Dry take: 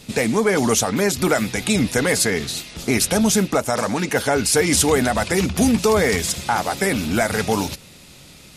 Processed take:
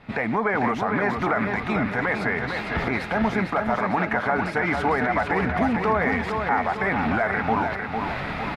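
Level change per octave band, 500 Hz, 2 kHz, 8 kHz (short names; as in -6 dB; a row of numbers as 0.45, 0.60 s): -6.0 dB, 0.0 dB, under -30 dB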